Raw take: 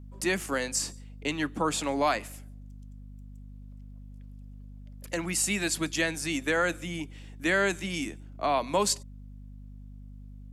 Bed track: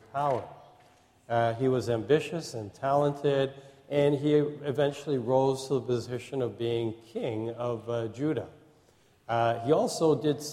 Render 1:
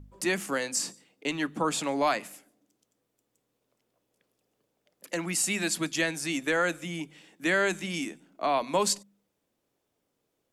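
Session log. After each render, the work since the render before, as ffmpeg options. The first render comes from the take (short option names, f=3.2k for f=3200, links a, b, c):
-af "bandreject=f=50:t=h:w=4,bandreject=f=100:t=h:w=4,bandreject=f=150:t=h:w=4,bandreject=f=200:t=h:w=4,bandreject=f=250:t=h:w=4"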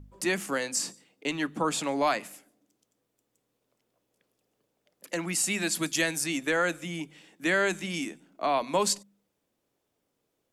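-filter_complex "[0:a]asettb=1/sr,asplit=3[a][b][c];[a]atrim=end=5.754[d];[b]atrim=start=5.75:end=6.24,asetpts=PTS-STARTPTS,afade=t=in:d=0.004:c=qsin,afade=t=out:st=0.486:d=0.004:c=qsin,highshelf=f=7.6k:g=11.5[e];[c]atrim=start=6.236[f];[d][e]acrossfade=d=0.004:c1=hsin:c2=qsin[g];[g][f]acrossfade=d=0.004:c1=qsin:c2=hsin"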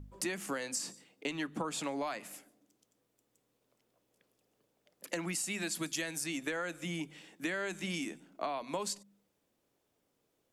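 -af "acompressor=threshold=-33dB:ratio=12"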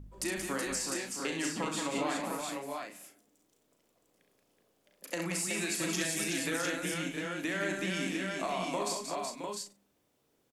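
-filter_complex "[0:a]asplit=2[a][b];[b]adelay=37,volume=-7.5dB[c];[a][c]amix=inputs=2:normalize=0,aecho=1:1:66|179|374|667|701:0.501|0.473|0.562|0.355|0.596"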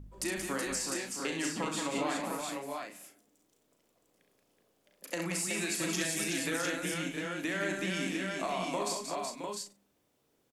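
-af anull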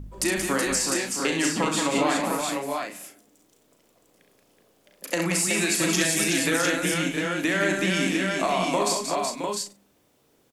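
-af "volume=10dB"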